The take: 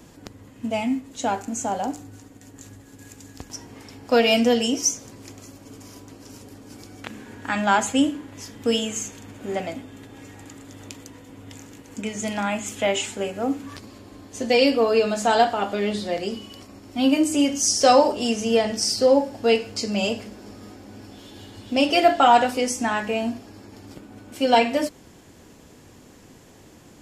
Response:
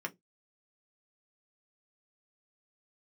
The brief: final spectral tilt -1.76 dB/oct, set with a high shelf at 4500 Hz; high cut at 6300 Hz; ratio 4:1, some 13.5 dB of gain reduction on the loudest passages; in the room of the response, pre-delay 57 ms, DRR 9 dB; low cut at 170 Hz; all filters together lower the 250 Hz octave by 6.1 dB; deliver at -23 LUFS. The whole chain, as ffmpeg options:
-filter_complex "[0:a]highpass=170,lowpass=6.3k,equalizer=f=250:t=o:g=-6,highshelf=f=4.5k:g=7.5,acompressor=threshold=-28dB:ratio=4,asplit=2[a][b];[1:a]atrim=start_sample=2205,adelay=57[c];[b][c]afir=irnorm=-1:irlink=0,volume=-11dB[d];[a][d]amix=inputs=2:normalize=0,volume=8.5dB"

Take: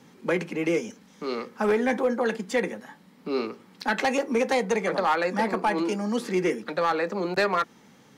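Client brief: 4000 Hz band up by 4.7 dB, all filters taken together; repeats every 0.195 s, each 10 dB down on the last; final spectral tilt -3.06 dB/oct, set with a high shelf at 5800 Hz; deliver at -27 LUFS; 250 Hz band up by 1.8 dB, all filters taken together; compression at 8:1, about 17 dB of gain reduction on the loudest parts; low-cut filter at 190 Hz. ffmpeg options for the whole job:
-af "highpass=190,equalizer=f=250:t=o:g=4,equalizer=f=4k:t=o:g=8,highshelf=f=5.8k:g=-7,acompressor=threshold=-37dB:ratio=8,aecho=1:1:195|390|585|780:0.316|0.101|0.0324|0.0104,volume=13dB"

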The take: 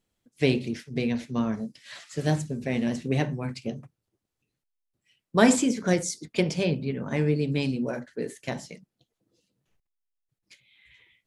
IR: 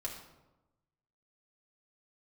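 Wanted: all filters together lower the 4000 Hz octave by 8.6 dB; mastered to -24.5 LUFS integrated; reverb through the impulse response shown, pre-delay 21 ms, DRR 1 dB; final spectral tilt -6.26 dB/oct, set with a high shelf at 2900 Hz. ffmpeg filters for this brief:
-filter_complex "[0:a]highshelf=f=2.9k:g=-4,equalizer=f=4k:t=o:g=-8.5,asplit=2[a][b];[1:a]atrim=start_sample=2205,adelay=21[c];[b][c]afir=irnorm=-1:irlink=0,volume=-1.5dB[d];[a][d]amix=inputs=2:normalize=0,volume=1dB"

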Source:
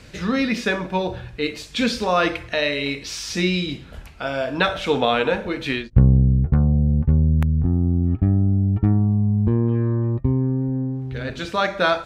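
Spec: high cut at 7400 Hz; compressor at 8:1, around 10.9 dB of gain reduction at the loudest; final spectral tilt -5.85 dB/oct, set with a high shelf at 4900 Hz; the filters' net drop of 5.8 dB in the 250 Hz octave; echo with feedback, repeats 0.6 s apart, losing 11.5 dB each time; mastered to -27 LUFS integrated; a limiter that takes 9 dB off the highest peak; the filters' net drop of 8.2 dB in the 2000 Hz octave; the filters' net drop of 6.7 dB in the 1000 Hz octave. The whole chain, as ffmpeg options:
-af "lowpass=7.4k,equalizer=f=250:t=o:g=-8,equalizer=f=1k:t=o:g=-6.5,equalizer=f=2k:t=o:g=-7.5,highshelf=f=4.9k:g=-6.5,acompressor=threshold=-21dB:ratio=8,alimiter=limit=-20.5dB:level=0:latency=1,aecho=1:1:600|1200|1800:0.266|0.0718|0.0194,volume=2dB"

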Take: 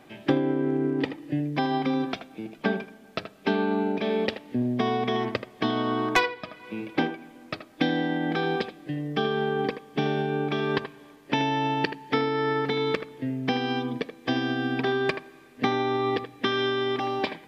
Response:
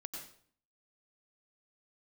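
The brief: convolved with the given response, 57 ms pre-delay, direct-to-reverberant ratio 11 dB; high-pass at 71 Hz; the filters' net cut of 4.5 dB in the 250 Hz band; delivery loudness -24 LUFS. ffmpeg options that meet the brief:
-filter_complex "[0:a]highpass=71,equalizer=f=250:t=o:g=-5.5,asplit=2[a][b];[1:a]atrim=start_sample=2205,adelay=57[c];[b][c]afir=irnorm=-1:irlink=0,volume=-8.5dB[d];[a][d]amix=inputs=2:normalize=0,volume=5dB"

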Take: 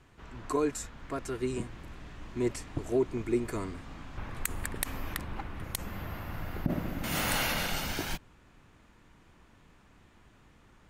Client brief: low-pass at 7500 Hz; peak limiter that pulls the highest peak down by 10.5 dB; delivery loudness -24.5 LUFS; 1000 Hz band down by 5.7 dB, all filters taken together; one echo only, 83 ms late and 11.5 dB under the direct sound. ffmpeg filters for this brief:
-af "lowpass=7.5k,equalizer=f=1k:t=o:g=-7.5,alimiter=level_in=2.5dB:limit=-24dB:level=0:latency=1,volume=-2.5dB,aecho=1:1:83:0.266,volume=14dB"

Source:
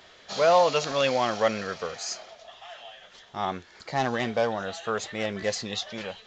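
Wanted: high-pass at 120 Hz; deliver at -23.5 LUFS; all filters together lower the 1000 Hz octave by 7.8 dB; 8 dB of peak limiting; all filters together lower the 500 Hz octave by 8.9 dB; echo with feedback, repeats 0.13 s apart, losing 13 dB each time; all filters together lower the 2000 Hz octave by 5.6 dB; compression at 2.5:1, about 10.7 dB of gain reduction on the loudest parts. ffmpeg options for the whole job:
-af "highpass=120,equalizer=f=500:t=o:g=-8.5,equalizer=f=1k:t=o:g=-6,equalizer=f=2k:t=o:g=-5,acompressor=threshold=-40dB:ratio=2.5,alimiter=level_in=9dB:limit=-24dB:level=0:latency=1,volume=-9dB,aecho=1:1:130|260|390:0.224|0.0493|0.0108,volume=20.5dB"

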